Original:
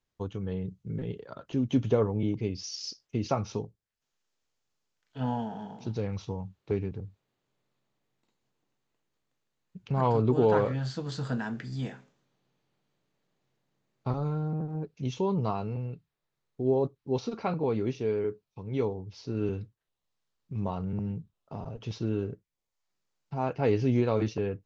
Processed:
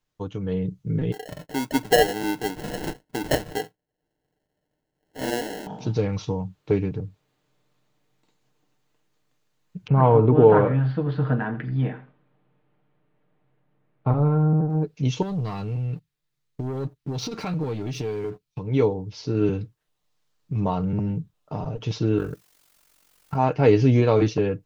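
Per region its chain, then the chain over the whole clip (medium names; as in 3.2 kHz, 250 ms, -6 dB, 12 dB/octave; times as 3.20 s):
1.12–5.67 s: high-pass 370 Hz + sample-rate reducer 1.2 kHz
9.87–14.70 s: Bessel low-pass 1.9 kHz, order 6 + delay 84 ms -15 dB
15.22–18.59 s: peaking EQ 670 Hz -10 dB 2.5 oct + waveshaping leveller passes 2 + compression 12:1, threshold -34 dBFS
22.17–23.35 s: peaking EQ 1.3 kHz +14.5 dB 0.89 oct + added noise white -67 dBFS + AM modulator 46 Hz, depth 85%
whole clip: comb 6.6 ms, depth 43%; level rider gain up to 5 dB; trim +3 dB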